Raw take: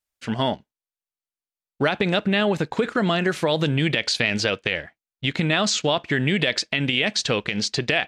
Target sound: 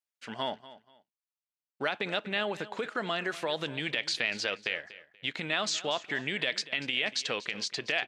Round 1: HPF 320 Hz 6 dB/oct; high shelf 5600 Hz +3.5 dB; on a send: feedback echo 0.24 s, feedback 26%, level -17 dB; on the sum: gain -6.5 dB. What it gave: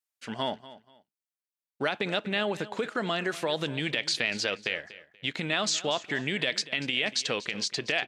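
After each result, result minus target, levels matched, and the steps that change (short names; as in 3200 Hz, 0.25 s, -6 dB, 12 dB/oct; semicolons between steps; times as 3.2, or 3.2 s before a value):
250 Hz band +3.0 dB; 8000 Hz band +2.5 dB
change: HPF 710 Hz 6 dB/oct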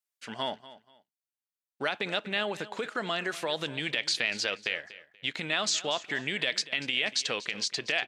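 8000 Hz band +3.0 dB
change: high shelf 5600 Hz -4.5 dB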